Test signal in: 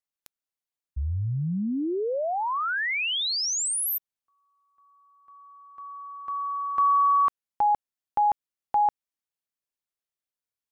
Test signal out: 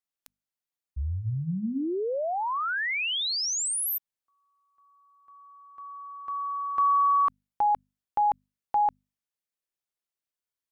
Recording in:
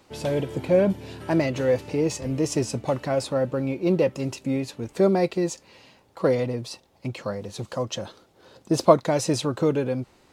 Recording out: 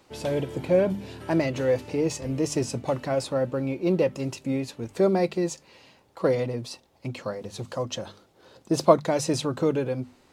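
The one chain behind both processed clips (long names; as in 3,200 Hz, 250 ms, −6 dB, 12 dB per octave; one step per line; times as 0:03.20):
mains-hum notches 50/100/150/200/250 Hz
level −1.5 dB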